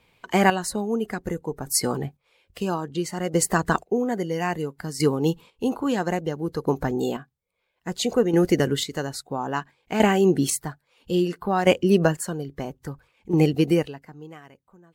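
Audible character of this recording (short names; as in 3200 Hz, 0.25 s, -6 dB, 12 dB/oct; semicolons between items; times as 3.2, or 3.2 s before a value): chopped level 0.6 Hz, depth 60%, duty 30%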